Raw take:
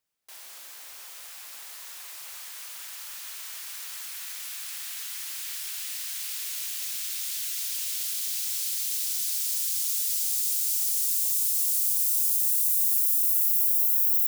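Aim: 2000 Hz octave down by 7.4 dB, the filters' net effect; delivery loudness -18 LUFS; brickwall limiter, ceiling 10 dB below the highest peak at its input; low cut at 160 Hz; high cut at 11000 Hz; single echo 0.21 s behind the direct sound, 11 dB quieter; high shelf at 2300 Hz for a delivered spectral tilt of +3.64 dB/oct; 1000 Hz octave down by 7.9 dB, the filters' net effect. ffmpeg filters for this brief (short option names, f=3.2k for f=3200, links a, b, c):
-af "highpass=160,lowpass=11k,equalizer=f=1k:t=o:g=-7.5,equalizer=f=2k:t=o:g=-4.5,highshelf=f=2.3k:g=-5.5,alimiter=level_in=10dB:limit=-24dB:level=0:latency=1,volume=-10dB,aecho=1:1:210:0.282,volume=23.5dB"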